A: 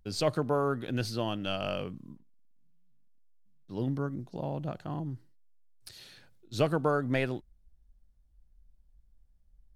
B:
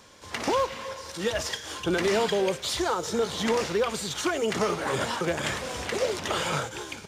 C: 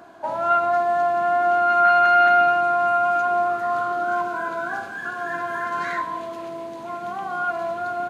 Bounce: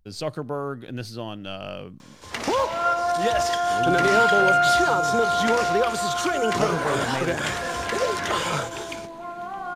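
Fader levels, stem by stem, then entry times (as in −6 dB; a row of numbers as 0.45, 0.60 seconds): −1.0, +2.0, −3.5 decibels; 0.00, 2.00, 2.35 seconds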